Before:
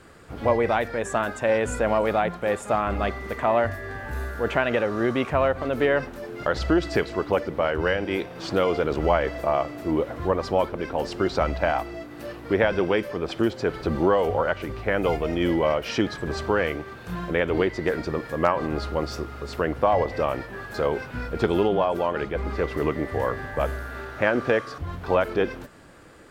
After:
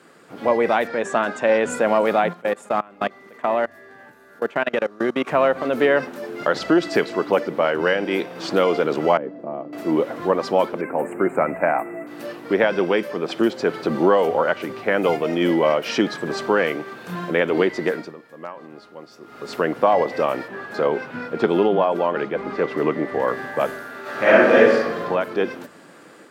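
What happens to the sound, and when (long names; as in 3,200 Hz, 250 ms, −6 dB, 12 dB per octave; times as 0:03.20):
0:00.87–0:01.70: low-pass filter 6,600 Hz
0:02.33–0:05.27: output level in coarse steps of 24 dB
0:09.17–0:09.73: resonant band-pass 230 Hz, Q 1.4
0:10.81–0:12.07: elliptic band-stop filter 2,300–8,000 Hz
0:17.83–0:19.52: duck −17.5 dB, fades 0.32 s
0:20.48–0:23.28: low-pass filter 3,200 Hz 6 dB per octave
0:24.01–0:25.00: thrown reverb, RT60 1.2 s, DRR −11 dB
whole clip: high-pass filter 170 Hz 24 dB per octave; automatic gain control gain up to 4.5 dB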